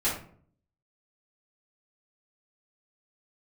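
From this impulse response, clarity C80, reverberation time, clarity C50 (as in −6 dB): 9.5 dB, 0.55 s, 4.5 dB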